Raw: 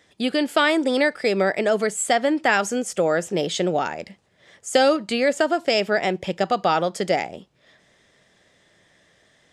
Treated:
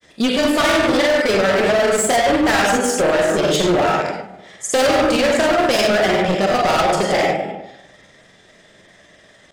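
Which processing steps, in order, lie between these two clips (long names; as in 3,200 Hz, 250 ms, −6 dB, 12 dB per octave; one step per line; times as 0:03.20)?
comb and all-pass reverb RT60 0.93 s, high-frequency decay 0.55×, pre-delay 15 ms, DRR −0.5 dB
hard clipping −21 dBFS, distortion −6 dB
granular cloud, spray 29 ms, pitch spread up and down by 0 semitones
level +8.5 dB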